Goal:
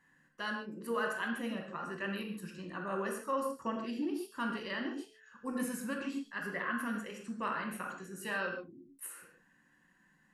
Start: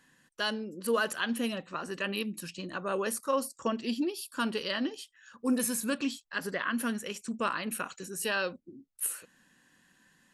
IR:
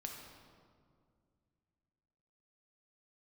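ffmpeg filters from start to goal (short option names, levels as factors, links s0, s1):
-filter_complex "[0:a]highshelf=f=2600:t=q:w=1.5:g=-7,bandreject=f=217.7:t=h:w=4,bandreject=f=435.4:t=h:w=4,bandreject=f=653.1:t=h:w=4[s0];[1:a]atrim=start_sample=2205,afade=t=out:st=0.24:d=0.01,atrim=end_sample=11025,asetrate=52920,aresample=44100[s1];[s0][s1]afir=irnorm=-1:irlink=0"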